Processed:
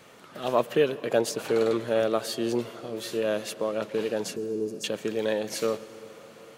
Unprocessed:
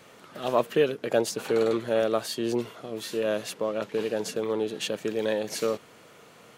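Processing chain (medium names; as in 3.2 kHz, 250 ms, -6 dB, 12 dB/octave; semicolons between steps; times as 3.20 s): 4.36–4.84 s: Chebyshev band-stop 430–5000 Hz, order 5; on a send: reverberation RT60 4.8 s, pre-delay 108 ms, DRR 16 dB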